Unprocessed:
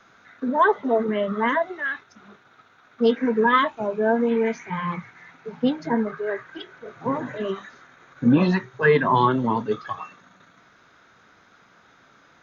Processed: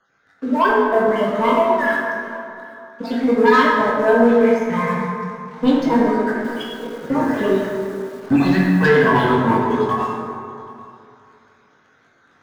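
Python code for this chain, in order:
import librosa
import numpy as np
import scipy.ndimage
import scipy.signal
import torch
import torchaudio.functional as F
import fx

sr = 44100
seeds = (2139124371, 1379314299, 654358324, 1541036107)

y = fx.spec_dropout(x, sr, seeds[0], share_pct=34)
y = fx.rider(y, sr, range_db=3, speed_s=2.0)
y = fx.leveller(y, sr, passes=2)
y = fx.doubler(y, sr, ms=21.0, db=-6.5)
y = y + 10.0 ** (-22.5 / 20.0) * np.pad(y, (int(783 * sr / 1000.0), 0))[:len(y)]
y = fx.rev_plate(y, sr, seeds[1], rt60_s=2.5, hf_ratio=0.45, predelay_ms=0, drr_db=-3.0)
y = fx.echo_crushed(y, sr, ms=104, feedback_pct=35, bits=5, wet_db=-12.0, at=(6.34, 8.87))
y = y * librosa.db_to_amplitude(-5.0)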